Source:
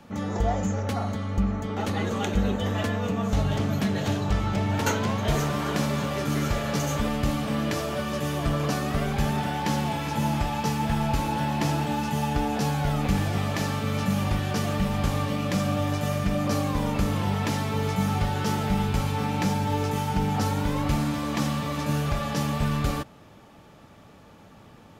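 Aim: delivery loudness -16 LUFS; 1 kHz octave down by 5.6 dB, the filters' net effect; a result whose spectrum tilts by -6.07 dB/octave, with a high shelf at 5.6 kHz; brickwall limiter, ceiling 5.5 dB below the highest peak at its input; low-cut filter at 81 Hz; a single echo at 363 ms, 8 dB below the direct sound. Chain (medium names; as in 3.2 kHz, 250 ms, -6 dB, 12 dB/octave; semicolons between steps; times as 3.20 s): high-pass 81 Hz; peaking EQ 1 kHz -7 dB; treble shelf 5.6 kHz -6 dB; peak limiter -19.5 dBFS; delay 363 ms -8 dB; trim +12.5 dB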